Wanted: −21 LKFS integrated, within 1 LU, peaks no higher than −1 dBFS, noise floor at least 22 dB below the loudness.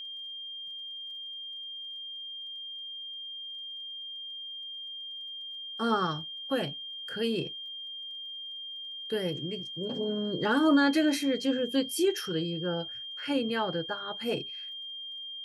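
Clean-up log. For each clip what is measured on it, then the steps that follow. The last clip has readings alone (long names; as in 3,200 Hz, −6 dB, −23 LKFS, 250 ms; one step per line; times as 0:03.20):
crackle rate 21 per second; interfering tone 3,200 Hz; level of the tone −38 dBFS; integrated loudness −32.0 LKFS; sample peak −14.0 dBFS; target loudness −21.0 LKFS
→ click removal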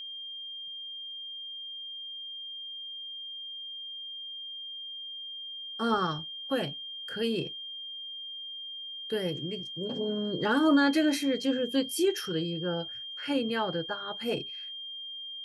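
crackle rate 0.13 per second; interfering tone 3,200 Hz; level of the tone −38 dBFS
→ notch filter 3,200 Hz, Q 30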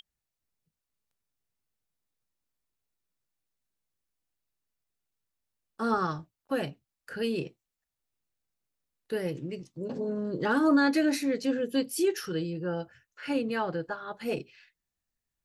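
interfering tone none found; integrated loudness −30.0 LKFS; sample peak −14.0 dBFS; target loudness −21.0 LKFS
→ level +9 dB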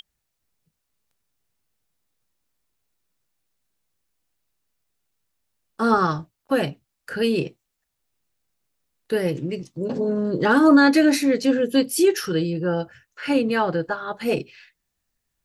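integrated loudness −21.0 LKFS; sample peak −5.0 dBFS; background noise floor −79 dBFS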